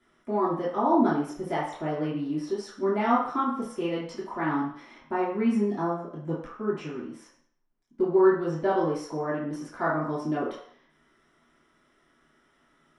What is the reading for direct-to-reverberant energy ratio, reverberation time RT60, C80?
−9.5 dB, 0.55 s, 7.5 dB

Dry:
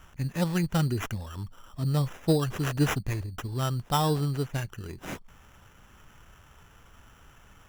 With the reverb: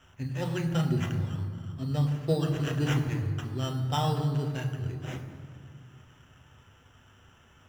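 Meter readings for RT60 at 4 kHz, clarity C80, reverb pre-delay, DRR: 1.4 s, 8.5 dB, 7 ms, 2.0 dB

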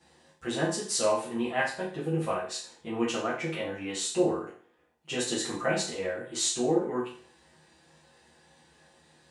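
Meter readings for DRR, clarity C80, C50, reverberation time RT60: −10.0 dB, 10.0 dB, 5.0 dB, 0.45 s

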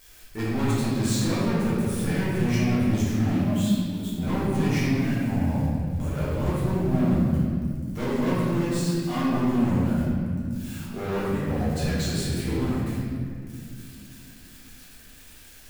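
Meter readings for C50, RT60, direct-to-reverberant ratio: −3.5 dB, 2.2 s, −10.5 dB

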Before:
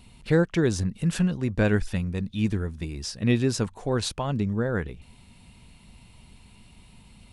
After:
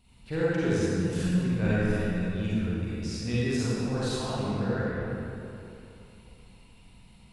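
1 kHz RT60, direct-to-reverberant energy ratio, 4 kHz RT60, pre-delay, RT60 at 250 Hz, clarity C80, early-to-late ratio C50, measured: 2.9 s, −10.5 dB, 1.8 s, 37 ms, 2.9 s, −4.0 dB, −7.5 dB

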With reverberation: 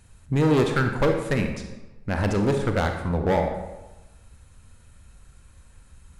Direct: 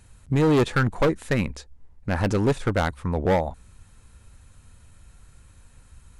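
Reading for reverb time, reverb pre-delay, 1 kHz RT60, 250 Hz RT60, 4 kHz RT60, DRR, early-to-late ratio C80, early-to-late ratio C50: 1.1 s, 31 ms, 1.1 s, 1.1 s, 0.75 s, 4.5 dB, 8.0 dB, 5.5 dB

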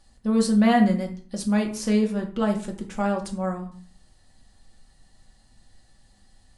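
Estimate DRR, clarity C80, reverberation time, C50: 1.0 dB, 15.0 dB, 0.45 s, 10.0 dB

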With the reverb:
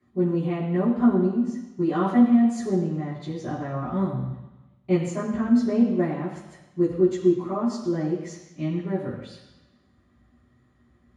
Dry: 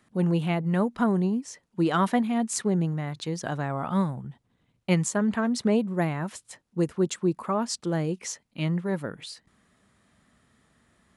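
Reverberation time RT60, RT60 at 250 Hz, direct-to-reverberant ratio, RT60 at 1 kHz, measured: 1.0 s, 1.0 s, −12.0 dB, 1.1 s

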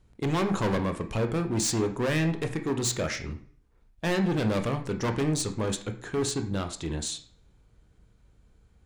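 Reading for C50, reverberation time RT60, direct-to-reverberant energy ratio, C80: 11.5 dB, 0.50 s, 5.5 dB, 15.0 dB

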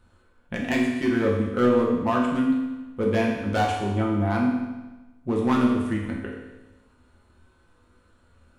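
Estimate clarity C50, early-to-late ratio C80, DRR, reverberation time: 2.5 dB, 5.0 dB, −2.5 dB, 1.1 s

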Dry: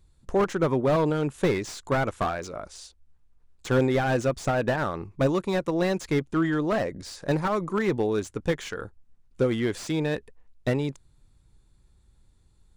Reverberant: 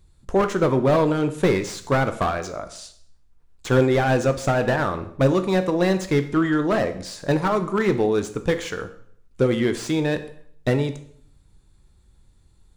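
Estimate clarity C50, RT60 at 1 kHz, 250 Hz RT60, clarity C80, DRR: 13.0 dB, 0.55 s, 0.70 s, 16.0 dB, 9.0 dB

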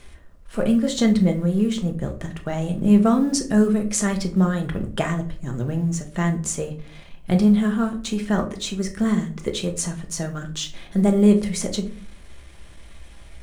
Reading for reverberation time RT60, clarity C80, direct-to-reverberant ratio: non-exponential decay, 17.0 dB, 3.5 dB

